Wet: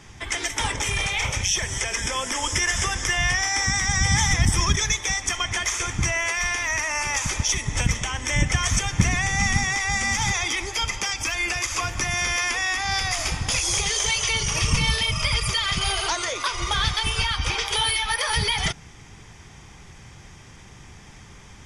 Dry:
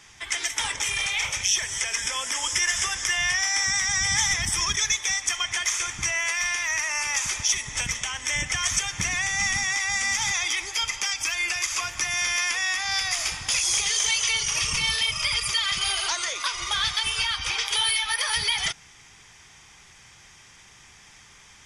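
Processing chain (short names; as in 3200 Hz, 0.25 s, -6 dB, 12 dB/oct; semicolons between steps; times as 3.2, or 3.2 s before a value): tilt shelf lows +8 dB, about 760 Hz; gain +7 dB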